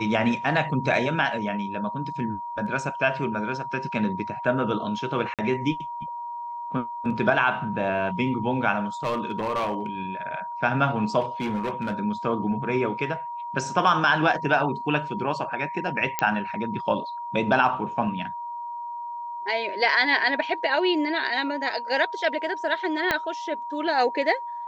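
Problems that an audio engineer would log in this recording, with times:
tone 950 Hz -31 dBFS
5.34–5.39 gap 47 ms
9.04–9.86 clipped -21.5 dBFS
11.2–11.99 clipped -23 dBFS
16.19 pop -7 dBFS
23.11 pop -8 dBFS

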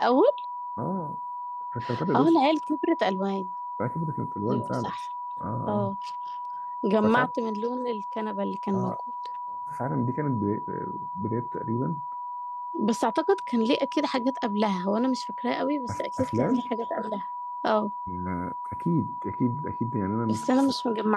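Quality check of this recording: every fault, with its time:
tone 980 Hz -32 dBFS

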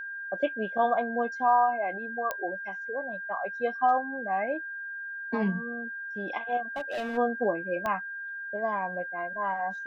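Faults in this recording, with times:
tone 1600 Hz -35 dBFS
2.31 pop -16 dBFS
6.76–7.18 clipped -29 dBFS
7.86 pop -18 dBFS

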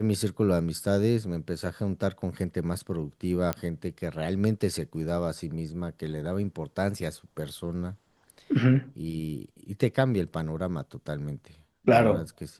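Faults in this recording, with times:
3.53 pop -13 dBFS

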